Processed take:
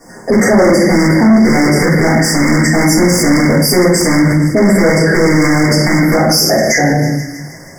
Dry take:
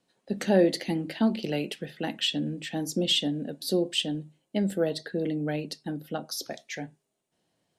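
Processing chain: rattle on loud lows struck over -35 dBFS, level -16 dBFS; in parallel at +2.5 dB: compression, threshold -31 dBFS, peak gain reduction 15 dB; on the sum: flange 0.54 Hz, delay 7 ms, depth 2.4 ms, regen -83%; simulated room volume 110 m³, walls mixed, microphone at 3.4 m; saturation -14.5 dBFS, distortion -9 dB; brick-wall FIR band-stop 2.2–4.7 kHz; on a send: feedback echo behind a high-pass 159 ms, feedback 66%, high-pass 1.4 kHz, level -20.5 dB; on the sum: loudness maximiser +26.5 dB; trim -2.5 dB

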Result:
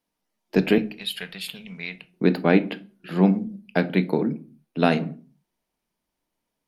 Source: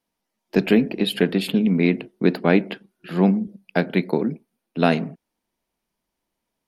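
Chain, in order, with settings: 0.78–2.14 s: amplifier tone stack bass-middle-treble 10-0-10; reverberation RT60 0.45 s, pre-delay 7 ms, DRR 12.5 dB; trim -1.5 dB

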